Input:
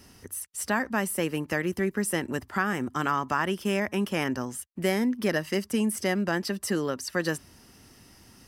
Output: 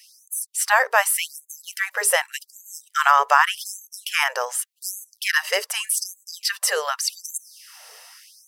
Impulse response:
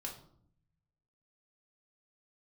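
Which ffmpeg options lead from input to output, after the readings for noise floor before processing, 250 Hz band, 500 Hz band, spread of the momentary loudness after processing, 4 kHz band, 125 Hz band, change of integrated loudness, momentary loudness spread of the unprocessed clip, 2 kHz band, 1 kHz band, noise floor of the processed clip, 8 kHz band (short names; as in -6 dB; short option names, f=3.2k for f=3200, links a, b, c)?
-55 dBFS, under -30 dB, 0.0 dB, 16 LU, +10.5 dB, under -40 dB, +6.5 dB, 5 LU, +9.0 dB, +10.0 dB, -66 dBFS, +11.5 dB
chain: -af "dynaudnorm=f=160:g=7:m=5.5dB,bandreject=f=50:t=h:w=6,bandreject=f=100:t=h:w=6,bandreject=f=150:t=h:w=6,bandreject=f=200:t=h:w=6,bandreject=f=250:t=h:w=6,bandreject=f=300:t=h:w=6,bandreject=f=350:t=h:w=6,bandreject=f=400:t=h:w=6,bandreject=f=450:t=h:w=6,afftfilt=real='re*gte(b*sr/1024,420*pow(6300/420,0.5+0.5*sin(2*PI*0.85*pts/sr)))':imag='im*gte(b*sr/1024,420*pow(6300/420,0.5+0.5*sin(2*PI*0.85*pts/sr)))':win_size=1024:overlap=0.75,volume=6.5dB"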